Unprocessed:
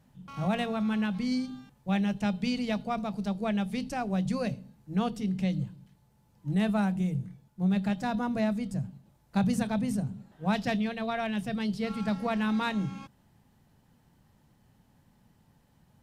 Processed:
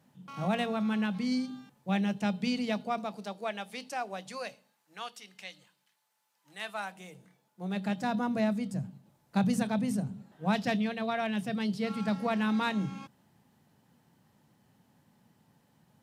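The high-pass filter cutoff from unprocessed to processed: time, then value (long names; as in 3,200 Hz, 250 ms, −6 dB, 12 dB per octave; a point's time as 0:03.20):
0:02.62 170 Hz
0:03.48 550 Hz
0:04.09 550 Hz
0:05.05 1,200 Hz
0:06.55 1,200 Hz
0:07.67 340 Hz
0:08.07 140 Hz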